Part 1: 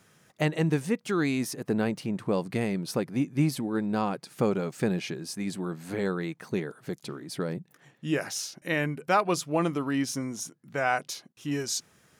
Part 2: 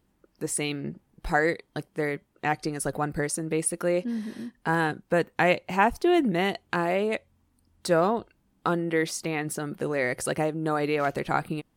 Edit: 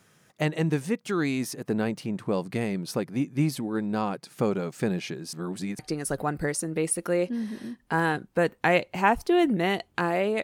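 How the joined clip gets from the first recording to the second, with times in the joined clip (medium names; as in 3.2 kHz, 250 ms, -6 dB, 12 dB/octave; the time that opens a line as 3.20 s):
part 1
5.33–5.79 s: reverse
5.79 s: go over to part 2 from 2.54 s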